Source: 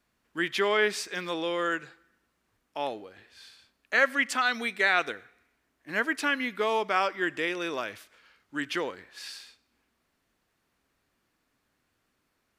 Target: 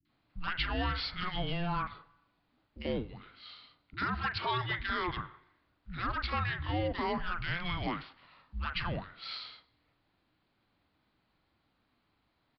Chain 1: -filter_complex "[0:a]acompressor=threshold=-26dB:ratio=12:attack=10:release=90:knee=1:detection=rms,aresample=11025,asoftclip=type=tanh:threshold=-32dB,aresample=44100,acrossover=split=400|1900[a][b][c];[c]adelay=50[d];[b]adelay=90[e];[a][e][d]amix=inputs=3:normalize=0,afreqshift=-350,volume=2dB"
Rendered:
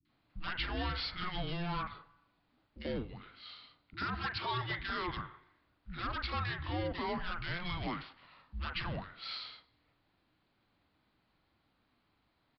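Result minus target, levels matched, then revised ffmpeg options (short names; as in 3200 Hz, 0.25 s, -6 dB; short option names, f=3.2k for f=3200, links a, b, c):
soft clip: distortion +8 dB
-filter_complex "[0:a]acompressor=threshold=-26dB:ratio=12:attack=10:release=90:knee=1:detection=rms,aresample=11025,asoftclip=type=tanh:threshold=-24dB,aresample=44100,acrossover=split=400|1900[a][b][c];[c]adelay=50[d];[b]adelay=90[e];[a][e][d]amix=inputs=3:normalize=0,afreqshift=-350,volume=2dB"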